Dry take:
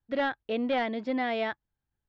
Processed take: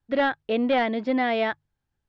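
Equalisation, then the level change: air absorption 51 m; notches 50/100/150 Hz; +6.0 dB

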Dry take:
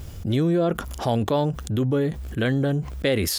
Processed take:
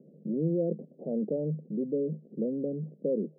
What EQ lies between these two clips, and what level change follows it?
rippled Chebyshev high-pass 150 Hz, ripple 6 dB; steep low-pass 530 Hz 48 dB/oct; -2.5 dB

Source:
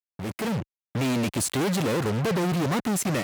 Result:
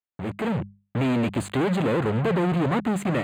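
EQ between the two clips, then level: running mean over 8 samples; notches 50/100/150/200 Hz; +2.5 dB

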